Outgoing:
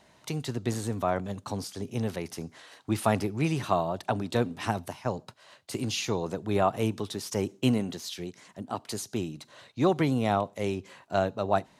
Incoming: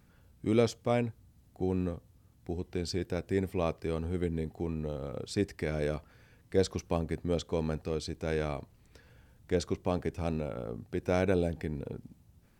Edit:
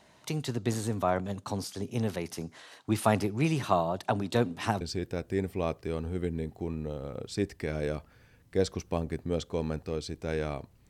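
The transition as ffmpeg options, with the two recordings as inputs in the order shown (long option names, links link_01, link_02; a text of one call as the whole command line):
ffmpeg -i cue0.wav -i cue1.wav -filter_complex "[0:a]apad=whole_dur=10.89,atrim=end=10.89,atrim=end=4.812[link_01];[1:a]atrim=start=2.798:end=8.88[link_02];[link_01][link_02]acrossfade=duration=0.004:curve1=hsin:curve2=hsin" out.wav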